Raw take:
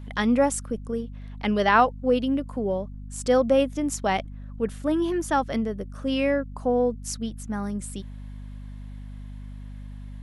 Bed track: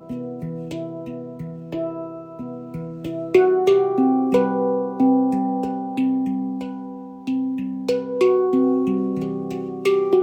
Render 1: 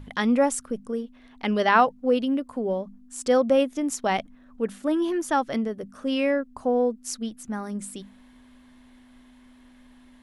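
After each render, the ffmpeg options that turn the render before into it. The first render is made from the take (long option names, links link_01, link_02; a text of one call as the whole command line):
ffmpeg -i in.wav -af "bandreject=frequency=50:width_type=h:width=6,bandreject=frequency=100:width_type=h:width=6,bandreject=frequency=150:width_type=h:width=6,bandreject=frequency=200:width_type=h:width=6" out.wav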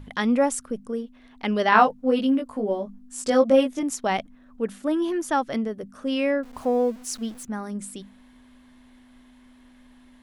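ffmpeg -i in.wav -filter_complex "[0:a]asettb=1/sr,asplit=3[link_01][link_02][link_03];[link_01]atrim=end=1.704[link_04];[link_02]atrim=start=1.7:end=3.83,asetpts=PTS-STARTPTS,afade=type=in:duration=0.004:curve=qsin,afade=type=out:start_time=2.126:duration=0.004:curve=qsin,asplit=2[link_05][link_06];[link_06]adelay=19,volume=-2.5dB[link_07];[link_05][link_07]amix=inputs=2:normalize=0,atrim=end_sample=93933[link_08];[link_03]atrim=start=3.826[link_09];[link_04][link_08]acrossfade=duration=0.004:curve1=hsin:curve2=qsin[link_10];[link_10][link_09]acrossfade=duration=0.004:curve1=qsin:curve2=hsin,asettb=1/sr,asplit=3[link_11][link_12][link_13];[link_11]atrim=end=6.434[link_14];[link_12]atrim=start=6.43:end=7.45,asetpts=PTS-STARTPTS,afade=type=in:duration=0.004:curve=qsin,afade=type=out:start_time=1.016:duration=0.004:curve=qsin,aeval=exprs='val(0)+0.5*0.00841*sgn(val(0))':channel_layout=same[link_15];[link_13]atrim=start=7.446[link_16];[link_14][link_15]acrossfade=duration=0.004:curve1=hsin:curve2=qsin[link_17];[link_17][link_16]acrossfade=duration=0.004:curve1=qsin:curve2=hsin" out.wav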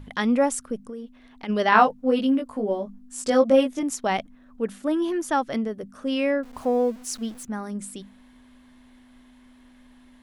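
ffmpeg -i in.wav -filter_complex "[0:a]asplit=3[link_01][link_02][link_03];[link_01]afade=type=out:start_time=0.76:duration=0.02[link_04];[link_02]acompressor=threshold=-32dB:ratio=6:attack=3.2:release=140:knee=1:detection=peak,afade=type=in:start_time=0.76:duration=0.02,afade=type=out:start_time=1.48:duration=0.02[link_05];[link_03]afade=type=in:start_time=1.48:duration=0.02[link_06];[link_04][link_05][link_06]amix=inputs=3:normalize=0" out.wav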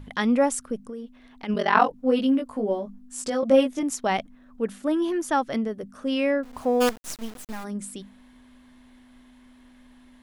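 ffmpeg -i in.wav -filter_complex "[0:a]asettb=1/sr,asplit=3[link_01][link_02][link_03];[link_01]atrim=end=1.544[link_04];[link_02]atrim=start=1.54:end=1.94,asetpts=PTS-STARTPTS,afade=type=in:duration=0.004:curve=qsin,afade=type=out:start_time=0.396:duration=0.004:curve=qsin,aeval=exprs='val(0)*sin(2*PI*22*n/s)':channel_layout=same[link_05];[link_03]atrim=start=1.936[link_06];[link_04][link_05]acrossfade=duration=0.004:curve1=hsin:curve2=qsin[link_07];[link_07][link_06]acrossfade=duration=0.004:curve1=qsin:curve2=hsin,asettb=1/sr,asplit=3[link_08][link_09][link_10];[link_08]atrim=end=2.784[link_11];[link_09]atrim=start=2.78:end=3.43,asetpts=PTS-STARTPTS,afade=type=in:duration=0.004:curve=qsin,afade=type=out:start_time=0.646:duration=0.004:curve=qsin,acompressor=threshold=-27dB:ratio=2:attack=3.2:release=140:knee=1:detection=peak[link_12];[link_10]atrim=start=3.426[link_13];[link_11][link_12]acrossfade=duration=0.004:curve1=hsin:curve2=qsin[link_14];[link_14][link_13]acrossfade=duration=0.004:curve1=qsin:curve2=hsin,asplit=3[link_15][link_16][link_17];[link_15]afade=type=out:start_time=6.8:duration=0.02[link_18];[link_16]acrusher=bits=4:dc=4:mix=0:aa=0.000001,afade=type=in:start_time=6.8:duration=0.02,afade=type=out:start_time=7.63:duration=0.02[link_19];[link_17]afade=type=in:start_time=7.63:duration=0.02[link_20];[link_18][link_19][link_20]amix=inputs=3:normalize=0" out.wav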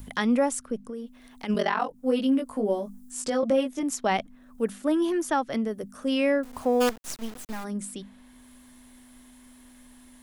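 ffmpeg -i in.wav -filter_complex "[0:a]acrossover=split=280|1100|7100[link_01][link_02][link_03][link_04];[link_04]acompressor=mode=upward:threshold=-45dB:ratio=2.5[link_05];[link_01][link_02][link_03][link_05]amix=inputs=4:normalize=0,alimiter=limit=-14dB:level=0:latency=1:release=464" out.wav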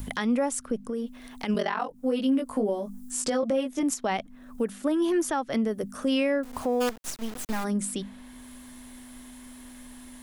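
ffmpeg -i in.wav -filter_complex "[0:a]asplit=2[link_01][link_02];[link_02]acompressor=threshold=-32dB:ratio=6,volume=0.5dB[link_03];[link_01][link_03]amix=inputs=2:normalize=0,alimiter=limit=-17.5dB:level=0:latency=1:release=351" out.wav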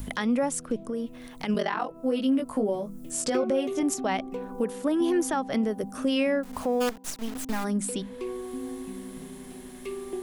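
ffmpeg -i in.wav -i bed.wav -filter_complex "[1:a]volume=-18dB[link_01];[0:a][link_01]amix=inputs=2:normalize=0" out.wav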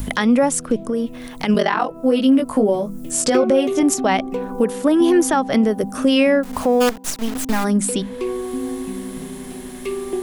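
ffmpeg -i in.wav -af "volume=10dB" out.wav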